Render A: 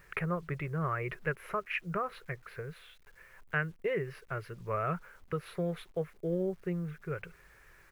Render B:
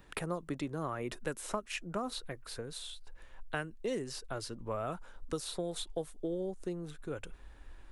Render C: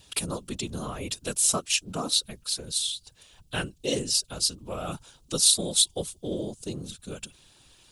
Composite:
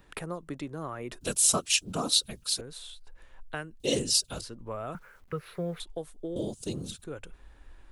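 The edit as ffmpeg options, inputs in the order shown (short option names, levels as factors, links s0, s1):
-filter_complex "[2:a]asplit=3[s0][s1][s2];[1:a]asplit=5[s3][s4][s5][s6][s7];[s3]atrim=end=1.212[s8];[s0]atrim=start=1.208:end=2.612[s9];[s4]atrim=start=2.608:end=3.802[s10];[s1]atrim=start=3.798:end=4.412[s11];[s5]atrim=start=4.408:end=4.952[s12];[0:a]atrim=start=4.948:end=5.802[s13];[s6]atrim=start=5.798:end=6.362[s14];[s2]atrim=start=6.358:end=7.042[s15];[s7]atrim=start=7.038[s16];[s8][s9]acrossfade=d=0.004:c1=hsin:c2=hsin[s17];[s17][s10]acrossfade=d=0.004:c1=hsin:c2=hsin[s18];[s18][s11]acrossfade=d=0.004:c1=hsin:c2=hsin[s19];[s19][s12]acrossfade=d=0.004:c1=hsin:c2=hsin[s20];[s20][s13]acrossfade=d=0.004:c1=hsin:c2=hsin[s21];[s21][s14]acrossfade=d=0.004:c1=hsin:c2=hsin[s22];[s22][s15]acrossfade=d=0.004:c1=hsin:c2=hsin[s23];[s23][s16]acrossfade=d=0.004:c1=hsin:c2=hsin"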